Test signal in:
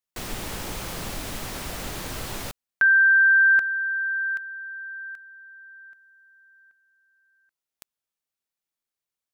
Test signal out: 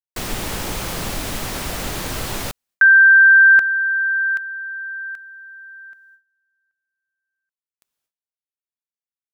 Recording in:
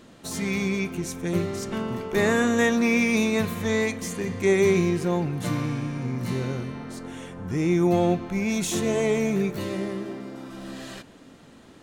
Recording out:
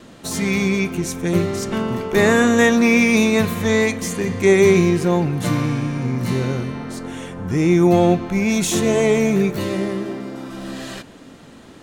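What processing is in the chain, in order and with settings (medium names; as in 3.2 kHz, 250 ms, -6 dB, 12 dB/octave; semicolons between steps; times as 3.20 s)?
gate with hold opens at -48 dBFS, hold 195 ms, range -23 dB; trim +7 dB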